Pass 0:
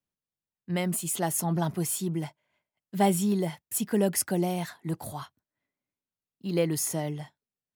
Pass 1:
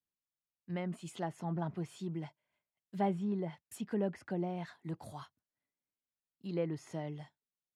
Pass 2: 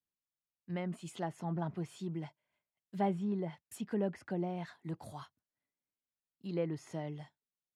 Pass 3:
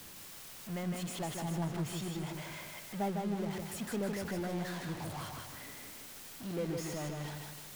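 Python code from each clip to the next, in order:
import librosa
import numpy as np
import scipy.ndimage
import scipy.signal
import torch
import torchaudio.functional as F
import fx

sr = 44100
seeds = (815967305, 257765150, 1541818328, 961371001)

y1 = fx.env_lowpass_down(x, sr, base_hz=1900.0, full_db=-23.5)
y1 = y1 * 10.0 ** (-9.0 / 20.0)
y2 = y1
y3 = y2 + 0.5 * 10.0 ** (-35.5 / 20.0) * np.sign(y2)
y3 = fx.echo_feedback(y3, sr, ms=156, feedback_pct=42, wet_db=-4)
y3 = y3 * 10.0 ** (-4.5 / 20.0)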